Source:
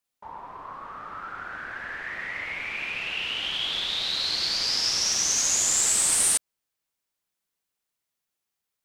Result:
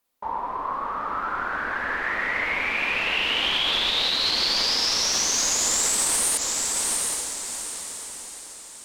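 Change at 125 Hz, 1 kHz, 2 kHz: +3.5, +10.0, +6.5 dB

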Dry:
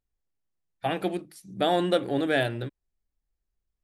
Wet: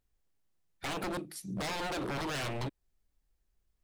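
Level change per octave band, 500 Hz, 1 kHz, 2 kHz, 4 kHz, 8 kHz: -13.0, -8.0, -7.0, -6.0, +5.0 dB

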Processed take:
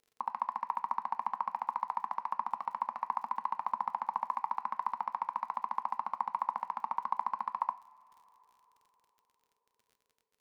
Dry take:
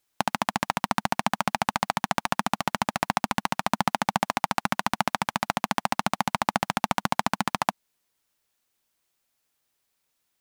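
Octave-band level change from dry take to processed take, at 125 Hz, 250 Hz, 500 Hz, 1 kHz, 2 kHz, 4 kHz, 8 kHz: under -30 dB, -28.5 dB, -21.5 dB, -6.0 dB, -21.5 dB, under -30 dB, under -35 dB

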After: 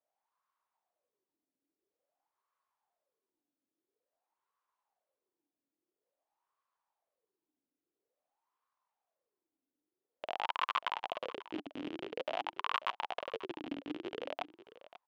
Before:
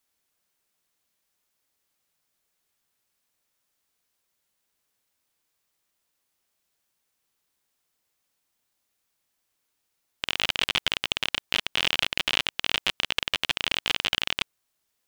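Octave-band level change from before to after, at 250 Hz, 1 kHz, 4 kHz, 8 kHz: -0.5 dB, -0.5 dB, -20.5 dB, under -25 dB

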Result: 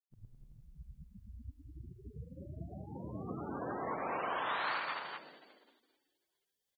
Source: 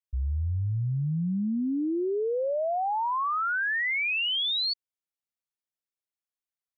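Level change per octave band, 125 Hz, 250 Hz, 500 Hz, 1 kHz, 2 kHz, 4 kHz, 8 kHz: -17.5 dB, -16.0 dB, -13.5 dB, -9.5 dB, -13.5 dB, -20.5 dB, n/a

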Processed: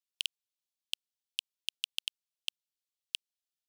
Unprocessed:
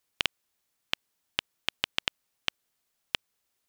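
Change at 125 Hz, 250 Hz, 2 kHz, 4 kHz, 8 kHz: under -30 dB, under -30 dB, -10.5 dB, -4.0 dB, 0.0 dB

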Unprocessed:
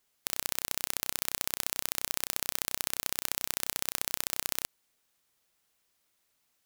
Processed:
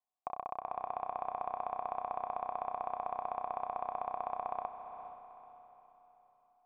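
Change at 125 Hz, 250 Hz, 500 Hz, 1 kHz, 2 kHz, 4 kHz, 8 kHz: -10.5 dB, -8.5 dB, +5.5 dB, +10.5 dB, -16.5 dB, under -30 dB, under -40 dB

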